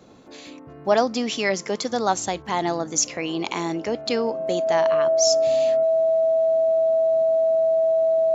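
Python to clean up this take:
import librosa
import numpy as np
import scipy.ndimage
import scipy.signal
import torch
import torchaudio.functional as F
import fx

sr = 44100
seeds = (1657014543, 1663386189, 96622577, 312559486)

y = fx.notch(x, sr, hz=650.0, q=30.0)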